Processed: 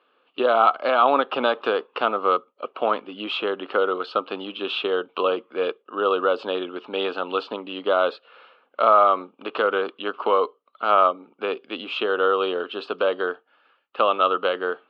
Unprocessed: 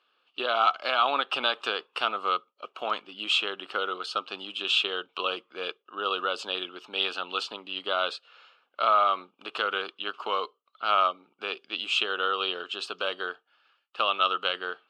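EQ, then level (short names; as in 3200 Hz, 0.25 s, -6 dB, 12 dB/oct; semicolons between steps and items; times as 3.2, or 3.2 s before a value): graphic EQ 125/250/500/1000/2000/4000/8000 Hz +6/+11/+11/+6/+6/+6/+6 dB; dynamic EQ 2700 Hz, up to -5 dB, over -28 dBFS, Q 0.93; air absorption 360 m; 0.0 dB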